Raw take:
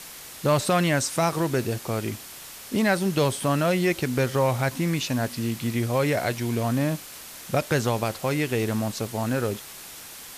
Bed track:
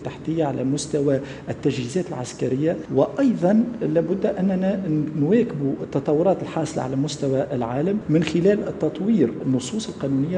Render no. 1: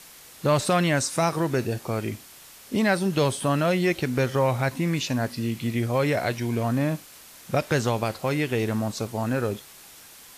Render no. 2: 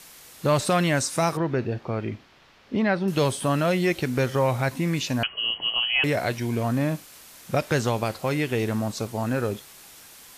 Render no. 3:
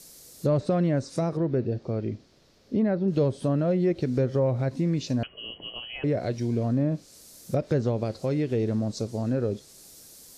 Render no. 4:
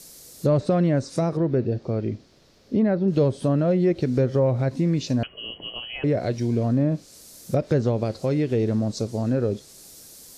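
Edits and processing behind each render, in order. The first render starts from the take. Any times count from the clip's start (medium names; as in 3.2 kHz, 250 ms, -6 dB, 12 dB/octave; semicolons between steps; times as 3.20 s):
noise print and reduce 6 dB
1.37–3.08 s: distance through air 250 m; 5.23–6.04 s: frequency inversion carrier 3.1 kHz
low-pass that closes with the level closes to 1.9 kHz, closed at -18.5 dBFS; high-order bell 1.6 kHz -13 dB 2.4 oct
trim +3.5 dB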